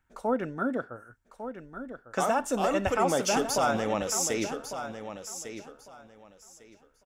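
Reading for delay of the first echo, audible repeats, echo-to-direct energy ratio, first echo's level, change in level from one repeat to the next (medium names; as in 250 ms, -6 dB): 1151 ms, 2, -10.5 dB, -10.5 dB, -14.0 dB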